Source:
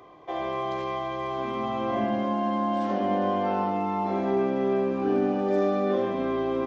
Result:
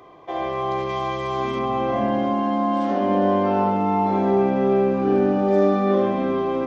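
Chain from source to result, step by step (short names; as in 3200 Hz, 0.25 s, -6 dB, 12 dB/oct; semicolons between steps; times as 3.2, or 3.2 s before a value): 0.89–1.59 high shelf 3700 Hz +11 dB; darkening echo 61 ms, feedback 64%, low-pass 2400 Hz, level -7 dB; gain +3 dB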